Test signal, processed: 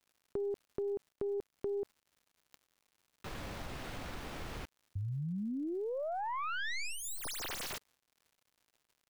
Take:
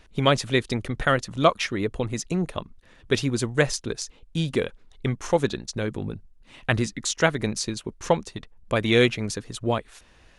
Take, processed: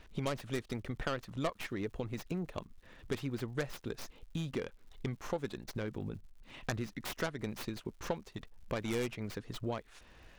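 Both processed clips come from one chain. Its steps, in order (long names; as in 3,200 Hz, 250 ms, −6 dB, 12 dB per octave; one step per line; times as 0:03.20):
stylus tracing distortion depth 0.4 ms
high-shelf EQ 7,000 Hz −11.5 dB
downward compressor 2.5 to 1, threshold −37 dBFS
surface crackle 160 per second −55 dBFS
level −2 dB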